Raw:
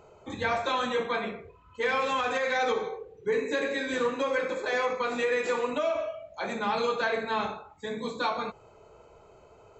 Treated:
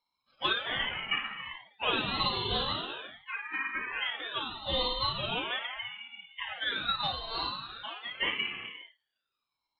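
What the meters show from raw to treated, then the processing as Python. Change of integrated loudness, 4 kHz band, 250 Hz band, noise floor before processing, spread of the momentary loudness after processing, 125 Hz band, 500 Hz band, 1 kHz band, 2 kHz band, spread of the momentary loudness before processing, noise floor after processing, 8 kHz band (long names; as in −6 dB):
−3.0 dB, +8.0 dB, −8.0 dB, −56 dBFS, 11 LU, +3.5 dB, −13.5 dB, −5.5 dB, −2.5 dB, 10 LU, below −85 dBFS, can't be measured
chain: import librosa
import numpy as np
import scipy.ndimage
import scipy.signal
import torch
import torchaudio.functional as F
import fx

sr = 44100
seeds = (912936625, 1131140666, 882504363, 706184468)

y = fx.cvsd(x, sr, bps=32000)
y = fx.room_flutter(y, sr, wall_m=9.2, rt60_s=0.49)
y = fx.dynamic_eq(y, sr, hz=1300.0, q=2.1, threshold_db=-39.0, ratio=4.0, max_db=-3)
y = fx.small_body(y, sr, hz=(300.0, 640.0, 1200.0, 2200.0), ring_ms=45, db=9)
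y = fx.rider(y, sr, range_db=5, speed_s=0.5)
y = scipy.signal.sosfilt(scipy.signal.ellip(3, 1.0, 50, [110.0, 1300.0], 'bandstop', fs=sr, output='sos'), y)
y = fx.noise_reduce_blind(y, sr, reduce_db=25)
y = fx.env_lowpass(y, sr, base_hz=1600.0, full_db=-21.0)
y = fx.low_shelf(y, sr, hz=190.0, db=-9.5)
y = fx.rev_gated(y, sr, seeds[0], gate_ms=420, shape='flat', drr_db=5.5)
y = fx.freq_invert(y, sr, carrier_hz=3800)
y = fx.ring_lfo(y, sr, carrier_hz=920.0, swing_pct=70, hz=0.41)
y = y * 10.0 ** (5.0 / 20.0)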